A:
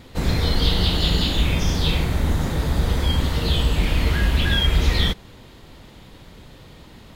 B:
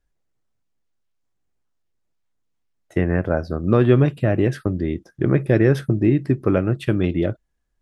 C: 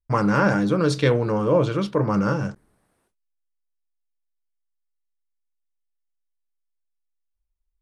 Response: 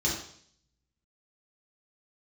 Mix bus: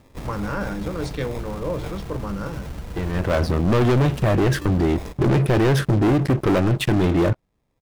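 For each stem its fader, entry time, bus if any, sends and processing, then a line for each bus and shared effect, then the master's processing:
-8.5 dB, 0.00 s, no send, echo send -20 dB, compressor 5:1, threshold -20 dBFS, peak gain reduction 8 dB; sample-and-hold 30×
3.1 s -18 dB -> 3.38 s -5 dB, 0.00 s, no send, no echo send, sample leveller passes 5
-8.5 dB, 0.15 s, no send, no echo send, dry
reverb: off
echo: echo 1.166 s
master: limiter -14 dBFS, peak gain reduction 7 dB

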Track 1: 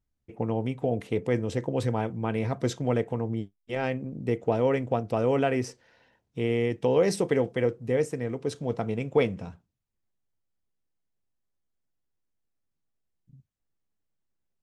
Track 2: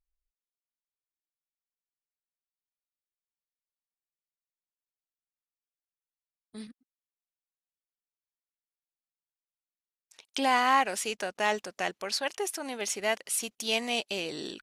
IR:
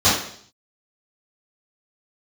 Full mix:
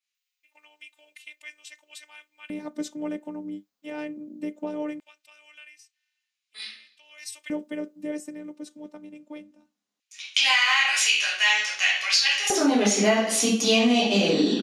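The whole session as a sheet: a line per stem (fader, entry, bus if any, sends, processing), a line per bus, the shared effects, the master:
-5.5 dB, 0.15 s, no send, high shelf 5700 Hz +11.5 dB; robotiser 299 Hz; auto duck -18 dB, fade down 1.90 s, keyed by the second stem
+2.0 dB, 0.00 s, send -10.5 dB, LPF 9800 Hz 12 dB/oct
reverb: on, RT60 0.60 s, pre-delay 3 ms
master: LFO high-pass square 0.2 Hz 220–2400 Hz; compressor 5:1, threshold -17 dBFS, peak gain reduction 8.5 dB

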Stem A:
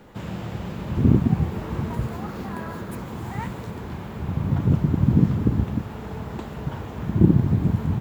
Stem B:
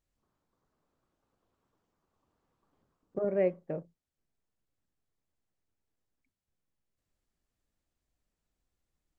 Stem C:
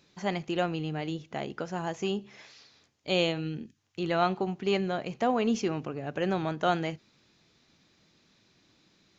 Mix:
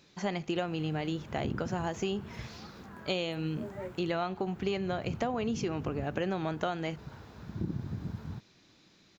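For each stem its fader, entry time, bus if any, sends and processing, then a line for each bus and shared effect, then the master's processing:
-17.0 dB, 0.40 s, no send, bell 1500 Hz +6 dB 0.51 oct
-10.5 dB, 0.40 s, no send, detuned doubles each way 12 cents
+2.5 dB, 0.00 s, no send, dry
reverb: off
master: compressor 12:1, threshold -28 dBFS, peak gain reduction 11.5 dB

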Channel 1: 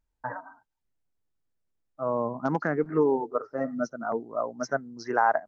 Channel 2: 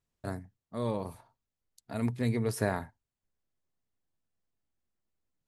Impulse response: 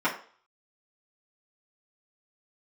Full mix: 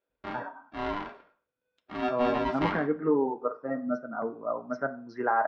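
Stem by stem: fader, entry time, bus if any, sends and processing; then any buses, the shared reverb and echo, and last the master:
-5.0 dB, 0.10 s, send -17.5 dB, HPF 49 Hz; bell 160 Hz +4.5 dB 0.65 oct
-5.5 dB, 0.00 s, send -11.5 dB, polarity switched at an audio rate 500 Hz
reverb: on, RT60 0.45 s, pre-delay 3 ms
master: LPF 3900 Hz 24 dB/oct

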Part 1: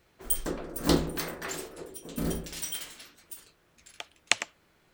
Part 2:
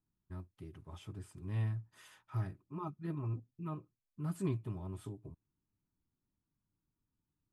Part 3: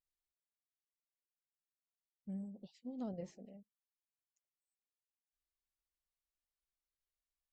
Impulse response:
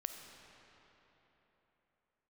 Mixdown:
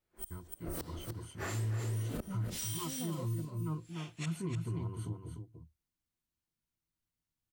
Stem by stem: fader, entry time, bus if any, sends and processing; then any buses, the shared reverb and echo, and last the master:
-2.0 dB, 0.00 s, no send, echo send -8.5 dB, phase scrambler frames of 0.2 s; flipped gate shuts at -24 dBFS, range -26 dB; three-band expander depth 70%
+2.0 dB, 0.00 s, no send, echo send -7 dB, bell 660 Hz -8.5 dB 0.38 oct; gate -59 dBFS, range -13 dB; ripple EQ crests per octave 1.9, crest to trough 13 dB
+1.0 dB, 0.00 s, no send, no echo send, dry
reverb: off
echo: echo 0.296 s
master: limiter -29 dBFS, peak gain reduction 10.5 dB

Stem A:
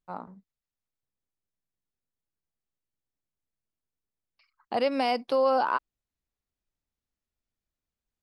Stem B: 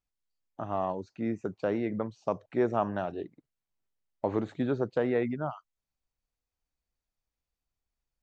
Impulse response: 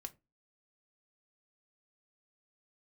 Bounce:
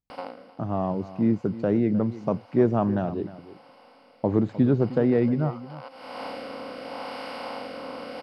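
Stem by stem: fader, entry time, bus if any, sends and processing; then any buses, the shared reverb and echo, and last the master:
-5.5 dB, 0.10 s, no send, echo send -22 dB, per-bin compression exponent 0.2; compressor 4:1, threshold -22 dBFS, peak gain reduction 7 dB; rotary speaker horn 0.8 Hz; auto duck -22 dB, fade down 0.30 s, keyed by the second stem
-7.5 dB, 0.00 s, no send, echo send -16 dB, bell 150 Hz +14.5 dB 2.8 oct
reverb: off
echo: echo 0.307 s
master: AGC gain up to 6 dB

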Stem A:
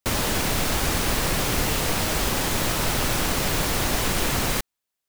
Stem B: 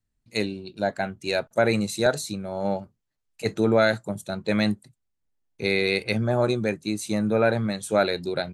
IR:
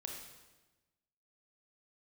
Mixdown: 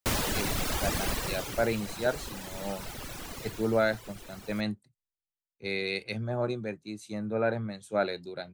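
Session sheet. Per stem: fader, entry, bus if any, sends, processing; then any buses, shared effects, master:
1.07 s -3.5 dB -> 1.72 s -13.5 dB -> 3.39 s -13.5 dB -> 3.87 s -21.5 dB, 0.00 s, no send, reverb removal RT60 1.9 s
-9.0 dB, 0.00 s, no send, high shelf 7800 Hz -10 dB; three-band expander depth 70%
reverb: off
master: dry

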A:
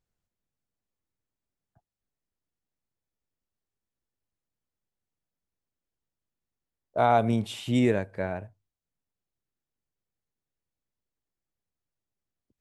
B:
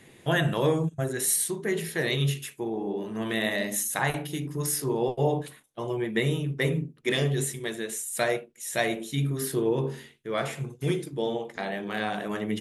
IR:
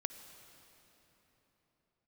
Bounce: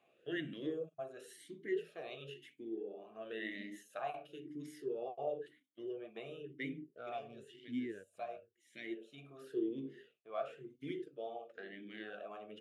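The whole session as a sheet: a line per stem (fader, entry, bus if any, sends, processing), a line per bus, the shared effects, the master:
-5.5 dB, 0.00 s, no send, Wiener smoothing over 15 samples; bell 720 Hz -13 dB 1.7 oct
-4.0 dB, 0.00 s, no send, auto duck -7 dB, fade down 0.30 s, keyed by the first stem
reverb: off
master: vowel sweep a-i 0.97 Hz

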